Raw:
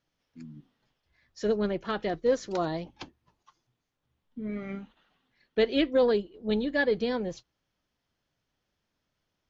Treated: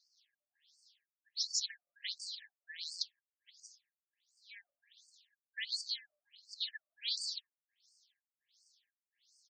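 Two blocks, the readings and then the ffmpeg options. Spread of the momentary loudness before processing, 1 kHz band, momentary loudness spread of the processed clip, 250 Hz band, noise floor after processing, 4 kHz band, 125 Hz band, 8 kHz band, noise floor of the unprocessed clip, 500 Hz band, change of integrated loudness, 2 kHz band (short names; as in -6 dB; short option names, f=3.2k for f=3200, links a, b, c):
23 LU, under -40 dB, 21 LU, under -40 dB, under -85 dBFS, +2.0 dB, under -40 dB, n/a, -82 dBFS, under -40 dB, -10.5 dB, -13.5 dB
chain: -filter_complex "[0:a]aeval=exprs='if(lt(val(0),0),0.447*val(0),val(0))':c=same,acrossover=split=300|4900[a][b][c];[a]adelay=140[d];[c]adelay=170[e];[d][b][e]amix=inputs=3:normalize=0,acrossover=split=300|900[f][g][h];[h]aexciter=amount=2.2:drive=3.3:freq=3.8k[i];[f][g][i]amix=inputs=3:normalize=0,alimiter=limit=-23.5dB:level=0:latency=1:release=94,afftfilt=real='re*lt(hypot(re,im),0.224)':imag='im*lt(hypot(re,im),0.224)':win_size=1024:overlap=0.75,acompressor=threshold=-47dB:ratio=1.5,equalizer=f=2.2k:w=1.3:g=-12,afftfilt=real='re*(1-between(b*sr/4096,290,1600))':imag='im*(1-between(b*sr/4096,290,1600))':win_size=4096:overlap=0.75,aemphasis=mode=production:type=50fm,acontrast=26,afftfilt=real='re*between(b*sr/1024,800*pow(6400/800,0.5+0.5*sin(2*PI*1.4*pts/sr))/1.41,800*pow(6400/800,0.5+0.5*sin(2*PI*1.4*pts/sr))*1.41)':imag='im*between(b*sr/1024,800*pow(6400/800,0.5+0.5*sin(2*PI*1.4*pts/sr))/1.41,800*pow(6400/800,0.5+0.5*sin(2*PI*1.4*pts/sr))*1.41)':win_size=1024:overlap=0.75,volume=11dB"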